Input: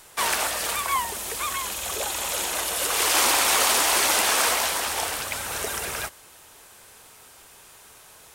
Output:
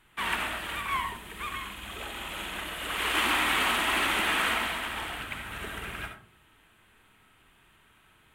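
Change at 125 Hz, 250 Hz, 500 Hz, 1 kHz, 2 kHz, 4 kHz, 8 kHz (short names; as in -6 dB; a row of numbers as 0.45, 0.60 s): +0.5, +0.5, -8.5, -5.0, -2.0, -6.0, -18.0 dB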